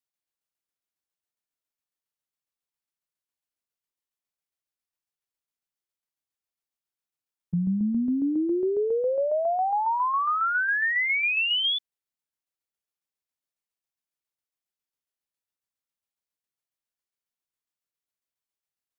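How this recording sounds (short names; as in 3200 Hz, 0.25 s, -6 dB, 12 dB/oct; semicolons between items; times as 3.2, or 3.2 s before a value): tremolo saw down 7.3 Hz, depth 45%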